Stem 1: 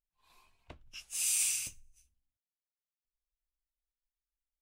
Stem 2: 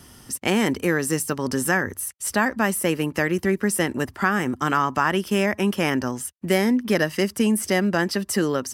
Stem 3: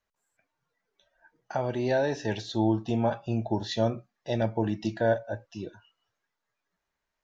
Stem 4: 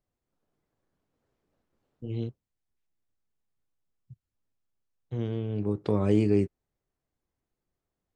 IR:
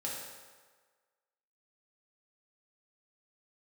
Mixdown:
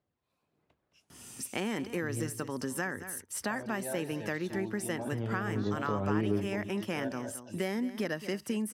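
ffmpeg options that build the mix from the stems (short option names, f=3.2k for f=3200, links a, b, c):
-filter_complex "[0:a]volume=-19.5dB,asplit=2[a][b];[b]volume=-9dB[c];[1:a]highshelf=f=7.9k:g=-5,adelay=1100,volume=-6dB,asplit=2[d][e];[e]volume=-16dB[f];[2:a]adelay=1950,volume=-9.5dB,asplit=2[g][h];[h]volume=-11.5dB[i];[3:a]aphaser=in_gain=1:out_gain=1:delay=1.7:decay=0.34:speed=1.6:type=sinusoidal,lowpass=3.5k,volume=2dB,asplit=2[j][k];[k]volume=-13.5dB[l];[c][f][i][l]amix=inputs=4:normalize=0,aecho=0:1:218:1[m];[a][d][g][j][m]amix=inputs=5:normalize=0,highpass=95,acompressor=threshold=-35dB:ratio=2"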